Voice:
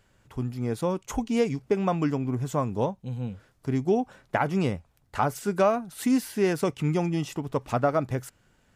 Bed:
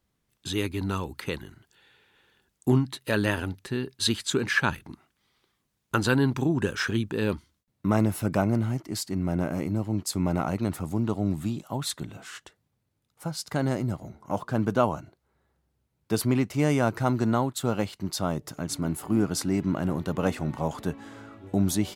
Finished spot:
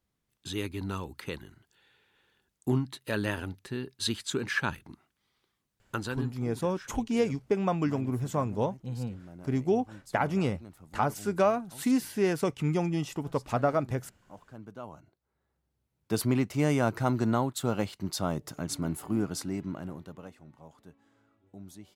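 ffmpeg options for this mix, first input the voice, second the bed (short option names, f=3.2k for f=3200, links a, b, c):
-filter_complex "[0:a]adelay=5800,volume=-2.5dB[a];[1:a]volume=12.5dB,afade=t=out:st=5.78:d=0.53:silence=0.177828,afade=t=in:st=14.81:d=1.43:silence=0.125893,afade=t=out:st=18.71:d=1.6:silence=0.0944061[b];[a][b]amix=inputs=2:normalize=0"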